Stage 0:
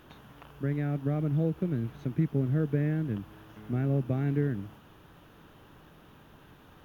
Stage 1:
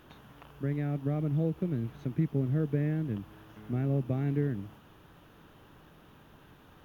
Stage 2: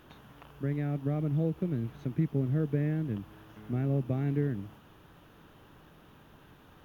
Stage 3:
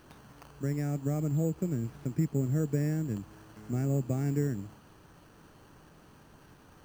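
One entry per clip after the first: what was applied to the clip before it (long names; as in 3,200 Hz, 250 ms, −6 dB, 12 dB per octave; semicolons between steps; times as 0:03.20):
dynamic equaliser 1,500 Hz, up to −4 dB, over −57 dBFS, Q 4.1; level −1.5 dB
no processing that can be heard
bad sample-rate conversion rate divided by 6×, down filtered, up hold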